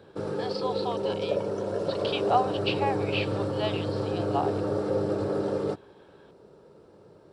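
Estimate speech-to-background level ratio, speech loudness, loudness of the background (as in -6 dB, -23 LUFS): -3.5 dB, -33.0 LUFS, -29.5 LUFS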